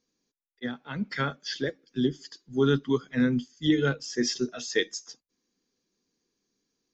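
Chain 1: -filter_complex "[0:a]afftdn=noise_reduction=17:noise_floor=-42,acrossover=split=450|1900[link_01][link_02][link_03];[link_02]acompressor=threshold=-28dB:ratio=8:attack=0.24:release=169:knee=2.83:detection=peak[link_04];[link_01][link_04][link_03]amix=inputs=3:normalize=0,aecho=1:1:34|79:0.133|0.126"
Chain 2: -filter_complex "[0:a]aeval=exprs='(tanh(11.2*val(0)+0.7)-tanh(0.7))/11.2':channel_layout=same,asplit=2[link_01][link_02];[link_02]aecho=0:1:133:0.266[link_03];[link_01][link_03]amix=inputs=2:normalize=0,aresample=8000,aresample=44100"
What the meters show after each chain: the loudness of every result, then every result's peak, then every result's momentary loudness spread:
−29.5, −33.0 LKFS; −12.0, −15.5 dBFS; 10, 10 LU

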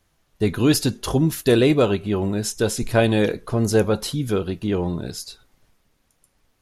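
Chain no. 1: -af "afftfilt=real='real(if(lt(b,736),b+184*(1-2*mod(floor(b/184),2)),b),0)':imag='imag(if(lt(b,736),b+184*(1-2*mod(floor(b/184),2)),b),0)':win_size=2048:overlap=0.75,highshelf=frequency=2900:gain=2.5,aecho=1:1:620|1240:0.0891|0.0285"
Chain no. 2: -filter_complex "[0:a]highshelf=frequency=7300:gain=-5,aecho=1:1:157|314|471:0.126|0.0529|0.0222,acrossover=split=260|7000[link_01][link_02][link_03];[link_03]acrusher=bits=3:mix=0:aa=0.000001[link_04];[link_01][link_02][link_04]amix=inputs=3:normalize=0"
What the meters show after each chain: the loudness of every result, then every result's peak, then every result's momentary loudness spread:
−15.5, −21.0 LKFS; −1.0, −3.5 dBFS; 7, 8 LU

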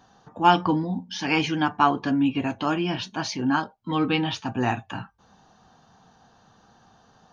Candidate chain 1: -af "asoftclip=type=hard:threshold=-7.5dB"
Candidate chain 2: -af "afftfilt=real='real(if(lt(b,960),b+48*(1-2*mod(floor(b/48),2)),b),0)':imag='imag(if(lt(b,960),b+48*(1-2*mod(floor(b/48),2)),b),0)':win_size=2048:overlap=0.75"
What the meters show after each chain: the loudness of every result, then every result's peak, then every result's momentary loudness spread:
−24.5, −23.0 LKFS; −7.5, −5.0 dBFS; 9, 9 LU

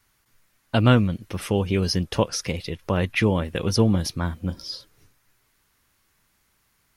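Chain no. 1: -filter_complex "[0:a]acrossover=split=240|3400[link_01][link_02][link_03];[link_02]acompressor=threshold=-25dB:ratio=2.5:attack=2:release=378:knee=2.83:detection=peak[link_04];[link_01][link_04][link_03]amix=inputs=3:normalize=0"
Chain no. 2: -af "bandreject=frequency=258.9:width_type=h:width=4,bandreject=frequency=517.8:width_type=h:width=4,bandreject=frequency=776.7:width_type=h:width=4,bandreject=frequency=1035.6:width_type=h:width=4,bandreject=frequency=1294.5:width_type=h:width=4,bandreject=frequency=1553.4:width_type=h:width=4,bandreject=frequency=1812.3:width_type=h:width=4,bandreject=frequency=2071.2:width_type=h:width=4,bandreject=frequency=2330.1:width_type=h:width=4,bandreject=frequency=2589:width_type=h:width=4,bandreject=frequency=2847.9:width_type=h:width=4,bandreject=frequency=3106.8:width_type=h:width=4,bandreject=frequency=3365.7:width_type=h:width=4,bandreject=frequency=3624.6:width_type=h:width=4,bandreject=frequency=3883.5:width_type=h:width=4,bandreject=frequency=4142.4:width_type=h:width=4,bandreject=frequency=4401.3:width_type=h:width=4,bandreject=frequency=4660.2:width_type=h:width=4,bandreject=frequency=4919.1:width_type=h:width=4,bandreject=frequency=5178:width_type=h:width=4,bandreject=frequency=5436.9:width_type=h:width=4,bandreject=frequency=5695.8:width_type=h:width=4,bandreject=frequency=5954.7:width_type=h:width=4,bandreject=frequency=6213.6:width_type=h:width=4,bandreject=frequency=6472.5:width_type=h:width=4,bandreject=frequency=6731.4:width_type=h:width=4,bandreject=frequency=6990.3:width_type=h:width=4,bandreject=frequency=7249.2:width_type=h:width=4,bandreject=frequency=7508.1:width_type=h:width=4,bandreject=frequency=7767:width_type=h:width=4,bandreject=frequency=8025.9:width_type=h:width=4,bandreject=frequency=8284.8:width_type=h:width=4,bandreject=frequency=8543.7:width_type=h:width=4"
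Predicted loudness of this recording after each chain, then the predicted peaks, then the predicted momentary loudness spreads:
−25.5, −23.5 LKFS; −7.5, −4.0 dBFS; 11, 13 LU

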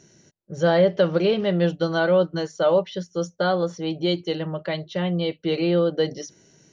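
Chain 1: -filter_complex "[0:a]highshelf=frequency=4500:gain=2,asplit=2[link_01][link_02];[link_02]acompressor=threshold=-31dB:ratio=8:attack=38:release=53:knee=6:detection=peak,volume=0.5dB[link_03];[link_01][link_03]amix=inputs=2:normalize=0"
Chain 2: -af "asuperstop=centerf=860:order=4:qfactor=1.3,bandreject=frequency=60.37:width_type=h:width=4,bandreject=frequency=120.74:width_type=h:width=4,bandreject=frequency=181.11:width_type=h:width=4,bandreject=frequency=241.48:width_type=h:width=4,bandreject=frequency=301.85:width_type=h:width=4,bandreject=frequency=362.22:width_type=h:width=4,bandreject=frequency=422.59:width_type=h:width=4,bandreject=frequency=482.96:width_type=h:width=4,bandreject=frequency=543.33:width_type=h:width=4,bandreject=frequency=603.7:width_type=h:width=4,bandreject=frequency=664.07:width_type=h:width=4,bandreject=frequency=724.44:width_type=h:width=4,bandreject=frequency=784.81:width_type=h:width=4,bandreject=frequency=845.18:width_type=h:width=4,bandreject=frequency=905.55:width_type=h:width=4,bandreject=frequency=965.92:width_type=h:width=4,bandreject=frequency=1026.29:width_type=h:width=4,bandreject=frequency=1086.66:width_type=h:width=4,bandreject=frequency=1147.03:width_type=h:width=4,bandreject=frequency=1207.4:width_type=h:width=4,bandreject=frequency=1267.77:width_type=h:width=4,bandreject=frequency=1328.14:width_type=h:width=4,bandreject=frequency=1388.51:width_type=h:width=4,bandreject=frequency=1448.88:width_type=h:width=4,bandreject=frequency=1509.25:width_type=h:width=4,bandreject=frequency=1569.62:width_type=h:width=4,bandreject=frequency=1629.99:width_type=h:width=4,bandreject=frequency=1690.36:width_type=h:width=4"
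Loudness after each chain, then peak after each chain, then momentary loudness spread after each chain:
−20.0, −24.5 LKFS; −5.0, −9.5 dBFS; 7, 9 LU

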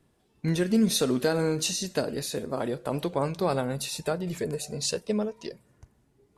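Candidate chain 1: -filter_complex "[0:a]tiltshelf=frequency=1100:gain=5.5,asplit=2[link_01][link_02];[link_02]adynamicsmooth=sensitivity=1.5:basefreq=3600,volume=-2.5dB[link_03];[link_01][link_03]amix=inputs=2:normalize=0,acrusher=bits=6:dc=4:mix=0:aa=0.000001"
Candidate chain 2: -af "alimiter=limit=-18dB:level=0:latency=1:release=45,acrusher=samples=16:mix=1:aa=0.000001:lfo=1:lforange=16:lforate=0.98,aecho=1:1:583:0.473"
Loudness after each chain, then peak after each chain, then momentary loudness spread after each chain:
−20.0, −29.5 LKFS; −5.0, −15.0 dBFS; 10, 9 LU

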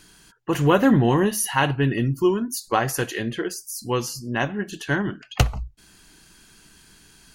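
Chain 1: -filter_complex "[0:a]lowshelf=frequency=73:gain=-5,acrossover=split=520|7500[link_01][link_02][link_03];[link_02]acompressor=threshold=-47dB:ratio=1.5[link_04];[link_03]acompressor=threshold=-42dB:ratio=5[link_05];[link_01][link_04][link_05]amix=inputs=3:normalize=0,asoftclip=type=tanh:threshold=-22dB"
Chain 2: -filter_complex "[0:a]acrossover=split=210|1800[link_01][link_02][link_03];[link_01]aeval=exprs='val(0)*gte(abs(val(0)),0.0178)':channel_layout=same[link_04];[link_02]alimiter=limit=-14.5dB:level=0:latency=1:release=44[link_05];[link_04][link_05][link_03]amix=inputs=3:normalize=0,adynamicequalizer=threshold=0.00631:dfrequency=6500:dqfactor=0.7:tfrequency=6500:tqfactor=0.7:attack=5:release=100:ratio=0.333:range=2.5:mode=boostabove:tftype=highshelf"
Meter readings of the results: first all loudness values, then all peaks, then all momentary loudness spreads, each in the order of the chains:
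−30.0, −23.5 LKFS; −22.0, −4.5 dBFS; 8, 10 LU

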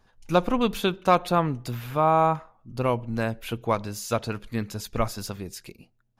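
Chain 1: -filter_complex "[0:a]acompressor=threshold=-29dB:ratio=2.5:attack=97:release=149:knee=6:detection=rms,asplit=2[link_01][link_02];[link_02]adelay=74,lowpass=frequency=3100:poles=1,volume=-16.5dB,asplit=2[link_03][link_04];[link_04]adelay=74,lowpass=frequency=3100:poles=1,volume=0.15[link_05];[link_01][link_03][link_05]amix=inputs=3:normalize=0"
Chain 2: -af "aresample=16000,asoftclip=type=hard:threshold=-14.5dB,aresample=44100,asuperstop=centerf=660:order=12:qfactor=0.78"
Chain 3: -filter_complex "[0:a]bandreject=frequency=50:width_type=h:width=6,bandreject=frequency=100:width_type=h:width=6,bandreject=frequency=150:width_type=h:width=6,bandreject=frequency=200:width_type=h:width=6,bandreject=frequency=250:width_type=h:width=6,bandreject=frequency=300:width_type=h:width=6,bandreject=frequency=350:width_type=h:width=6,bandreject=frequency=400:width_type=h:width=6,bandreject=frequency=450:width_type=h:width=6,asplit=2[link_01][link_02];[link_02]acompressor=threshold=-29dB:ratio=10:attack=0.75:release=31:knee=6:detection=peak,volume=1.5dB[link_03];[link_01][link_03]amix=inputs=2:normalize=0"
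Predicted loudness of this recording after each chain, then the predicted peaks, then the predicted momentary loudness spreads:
−30.5, −31.0, −24.0 LKFS; −10.5, −14.5, −5.0 dBFS; 9, 9, 10 LU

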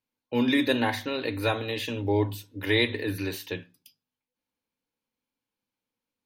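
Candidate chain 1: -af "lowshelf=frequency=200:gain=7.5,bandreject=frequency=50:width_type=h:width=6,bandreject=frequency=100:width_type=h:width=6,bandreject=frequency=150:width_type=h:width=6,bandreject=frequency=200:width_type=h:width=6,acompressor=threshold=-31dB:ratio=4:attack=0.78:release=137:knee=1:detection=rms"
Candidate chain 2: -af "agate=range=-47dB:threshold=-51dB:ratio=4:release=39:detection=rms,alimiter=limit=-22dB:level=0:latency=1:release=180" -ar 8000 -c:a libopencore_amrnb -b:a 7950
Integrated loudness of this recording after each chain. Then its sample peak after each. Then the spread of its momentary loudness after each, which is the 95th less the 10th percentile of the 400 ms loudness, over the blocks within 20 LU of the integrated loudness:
−36.5, −34.5 LKFS; −24.0, −20.5 dBFS; 6, 8 LU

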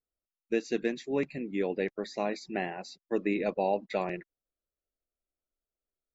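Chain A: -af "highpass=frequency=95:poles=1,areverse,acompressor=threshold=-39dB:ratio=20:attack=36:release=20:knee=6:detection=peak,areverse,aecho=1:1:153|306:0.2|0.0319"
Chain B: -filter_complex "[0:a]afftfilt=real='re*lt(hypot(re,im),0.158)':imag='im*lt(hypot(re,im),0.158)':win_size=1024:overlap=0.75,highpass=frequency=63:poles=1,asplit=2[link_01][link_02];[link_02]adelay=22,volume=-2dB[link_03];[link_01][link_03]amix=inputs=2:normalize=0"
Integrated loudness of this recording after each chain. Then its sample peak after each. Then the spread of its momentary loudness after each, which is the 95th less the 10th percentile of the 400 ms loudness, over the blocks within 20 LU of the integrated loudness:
−38.0, −36.0 LKFS; −21.5, −17.0 dBFS; 5, 6 LU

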